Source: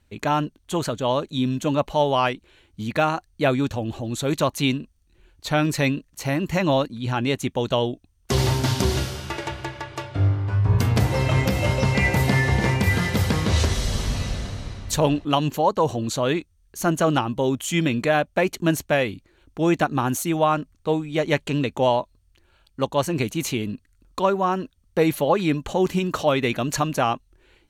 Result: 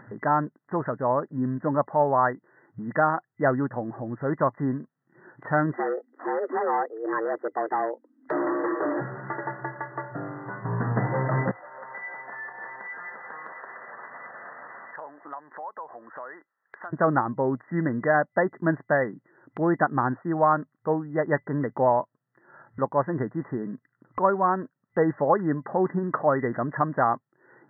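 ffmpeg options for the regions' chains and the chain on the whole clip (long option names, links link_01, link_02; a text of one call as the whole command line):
ffmpeg -i in.wav -filter_complex "[0:a]asettb=1/sr,asplit=3[link_01][link_02][link_03];[link_01]atrim=end=5.724[link_04];[link_02]atrim=start=5.72:end=9.01,asetpts=PTS-STARTPTS,afade=type=in:duration=0.004:curve=qsin,afade=type=out:start_time=3.286:duration=0.004:curve=qsin,afreqshift=220,asoftclip=type=hard:threshold=-20dB[link_05];[link_03]atrim=start=9.006[link_06];[link_04][link_05]acrossfade=duration=0.004:curve1=hsin:curve2=qsin[link_07];[link_07][link_06]acrossfade=duration=0.004:curve1=qsin:curve2=hsin,asettb=1/sr,asplit=3[link_08][link_09][link_10];[link_08]atrim=end=11.514[link_11];[link_09]atrim=start=11.51:end=16.93,asetpts=PTS-STARTPTS,afade=type=in:duration=0.004:curve=qsin,afade=type=out:start_time=5.416:duration=0.004:curve=qsin,acompressor=threshold=-30dB:ratio=5:attack=3.2:release=140:knee=1:detection=peak,highpass=850[link_12];[link_10]atrim=start=16.926[link_13];[link_11][link_12]acrossfade=duration=0.004:curve1=hsin:curve2=qsin[link_14];[link_14][link_13]acrossfade=duration=0.004:curve1=qsin:curve2=hsin,afftfilt=real='re*between(b*sr/4096,110,2000)':imag='im*between(b*sr/4096,110,2000)':win_size=4096:overlap=0.75,equalizer=frequency=1300:width=0.6:gain=5.5,acompressor=mode=upward:threshold=-28dB:ratio=2.5,volume=-4.5dB" out.wav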